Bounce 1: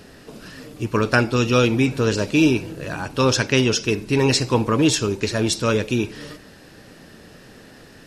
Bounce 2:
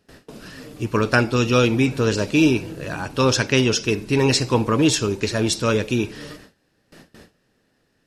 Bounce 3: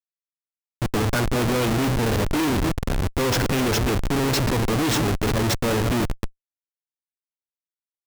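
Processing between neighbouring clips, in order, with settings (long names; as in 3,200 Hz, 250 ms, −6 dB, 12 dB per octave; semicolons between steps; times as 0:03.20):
noise gate with hold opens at −33 dBFS
feedback delay that plays each chunk backwards 170 ms, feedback 42%, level −10.5 dB; comparator with hysteresis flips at −21.5 dBFS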